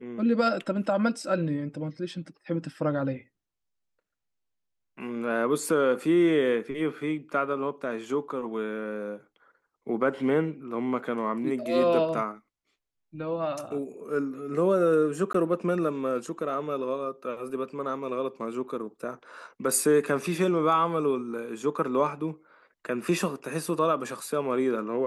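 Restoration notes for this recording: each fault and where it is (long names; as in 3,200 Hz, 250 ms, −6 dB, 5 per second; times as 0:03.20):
0:15.33–0:15.34: drop-out 14 ms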